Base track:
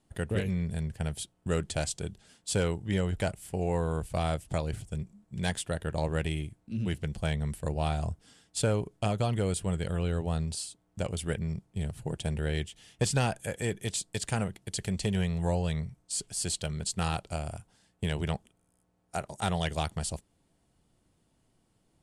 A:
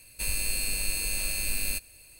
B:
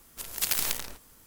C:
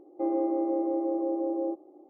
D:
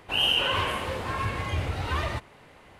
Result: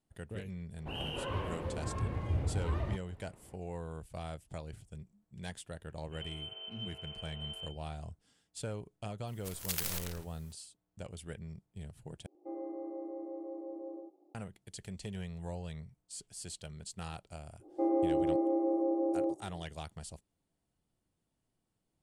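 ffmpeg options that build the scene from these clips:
-filter_complex "[3:a]asplit=2[s0][s1];[0:a]volume=0.237[s2];[4:a]tiltshelf=f=910:g=9.5[s3];[1:a]lowpass=f=2600:t=q:w=0.5098,lowpass=f=2600:t=q:w=0.6013,lowpass=f=2600:t=q:w=0.9,lowpass=f=2600:t=q:w=2.563,afreqshift=-3100[s4];[2:a]alimiter=level_in=2.37:limit=0.891:release=50:level=0:latency=1[s5];[s0]aecho=1:1:89:0.596[s6];[s2]asplit=2[s7][s8];[s7]atrim=end=12.264[s9];[s6]atrim=end=2.09,asetpts=PTS-STARTPTS,volume=0.2[s10];[s8]atrim=start=14.346[s11];[s3]atrim=end=2.79,asetpts=PTS-STARTPTS,volume=0.251,afade=t=in:d=0.004:c=hsin,afade=t=out:st=2.786:d=0.004:c=hsin,adelay=770[s12];[s4]atrim=end=2.19,asetpts=PTS-STARTPTS,volume=0.158,afade=t=in:d=0.004:c=hsin,afade=t=out:st=2.186:d=0.004:c=hsin,adelay=5920[s13];[s5]atrim=end=1.26,asetpts=PTS-STARTPTS,volume=0.168,afade=t=in:d=0.004:c=hsin,afade=t=out:st=1.256:d=0.004:c=hsin,adelay=9270[s14];[s1]atrim=end=2.09,asetpts=PTS-STARTPTS,volume=0.794,afade=t=in:d=0.05,afade=t=out:st=2.04:d=0.05,adelay=17590[s15];[s9][s10]acrossfade=d=0.004:c1=hsin:c2=hsin[s16];[s16][s11]acrossfade=d=0.004:c1=hsin:c2=hsin[s17];[s17][s12][s13][s14][s15]amix=inputs=5:normalize=0"

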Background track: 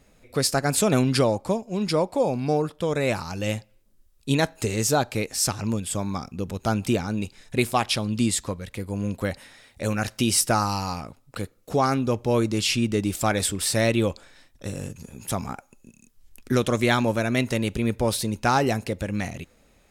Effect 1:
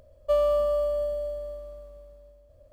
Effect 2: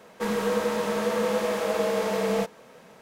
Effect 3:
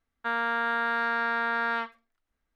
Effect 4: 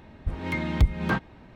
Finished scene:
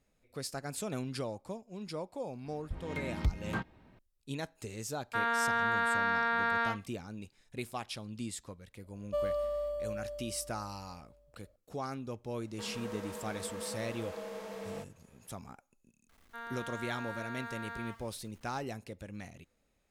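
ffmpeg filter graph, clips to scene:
-filter_complex "[3:a]asplit=2[s0][s1];[0:a]volume=0.141[s2];[s1]aeval=exprs='val(0)+0.5*0.0075*sgn(val(0))':c=same[s3];[4:a]atrim=end=1.55,asetpts=PTS-STARTPTS,volume=0.299,afade=t=in:d=0.004:c=hsin,afade=t=out:st=1.546:d=0.004:c=hsin,adelay=2440[s4];[s0]atrim=end=2.55,asetpts=PTS-STARTPTS,volume=0.75,afade=t=in:d=0.004:c=hsin,afade=t=out:st=2.546:d=0.004:c=hsin,adelay=215649S[s5];[1:a]atrim=end=2.72,asetpts=PTS-STARTPTS,volume=0.316,afade=t=in:d=0.004:c=hsin,afade=t=out:st=2.716:d=0.004:c=hsin,adelay=8840[s6];[2:a]atrim=end=3.01,asetpts=PTS-STARTPTS,volume=0.141,afade=t=in:d=0.004:c=hsin,afade=t=out:st=3.006:d=0.004:c=hsin,adelay=12380[s7];[s3]atrim=end=2.55,asetpts=PTS-STARTPTS,volume=0.158,afade=t=in:d=0.004:c=hsin,afade=t=out:st=2.546:d=0.004:c=hsin,adelay=16090[s8];[s2][s4][s5][s6][s7][s8]amix=inputs=6:normalize=0"

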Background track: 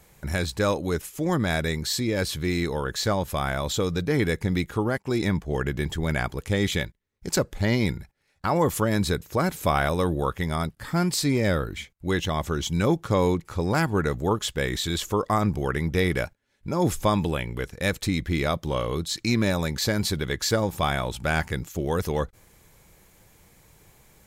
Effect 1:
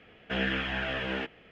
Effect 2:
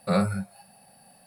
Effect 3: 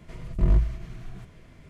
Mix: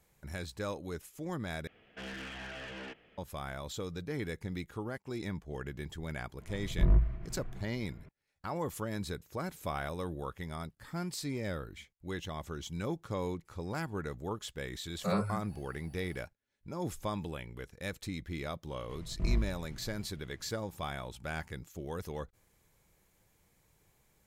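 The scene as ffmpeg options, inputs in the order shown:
-filter_complex "[3:a]asplit=2[s0][s1];[0:a]volume=0.2[s2];[1:a]asoftclip=type=tanh:threshold=0.0237[s3];[s0]lowpass=1900[s4];[2:a]acrossover=split=8100[s5][s6];[s6]acompressor=threshold=0.00141:ratio=4:attack=1:release=60[s7];[s5][s7]amix=inputs=2:normalize=0[s8];[s2]asplit=2[s9][s10];[s9]atrim=end=1.674[s11];[s3]atrim=end=1.51,asetpts=PTS-STARTPTS,volume=0.422[s12];[s10]atrim=start=3.176[s13];[s4]atrim=end=1.69,asetpts=PTS-STARTPTS,volume=0.596,afade=t=in:d=0.004:c=hsin,afade=t=out:st=1.686:d=0.004:c=hsin,adelay=6400[s14];[s8]atrim=end=1.26,asetpts=PTS-STARTPTS,volume=0.398,afade=t=in:d=0.004:c=hsin,afade=t=out:st=1.256:d=0.004:c=hsin,adelay=14970[s15];[s1]atrim=end=1.69,asetpts=PTS-STARTPTS,volume=0.316,afade=t=in:d=0.004:c=hsin,afade=t=out:st=1.686:d=0.004:c=hsin,adelay=18810[s16];[s11][s12]acrossfade=d=0.004:c1=hsin:c2=hsin[s17];[s17][s13]acrossfade=d=0.004:c1=hsin:c2=hsin[s18];[s18][s14][s15][s16]amix=inputs=4:normalize=0"

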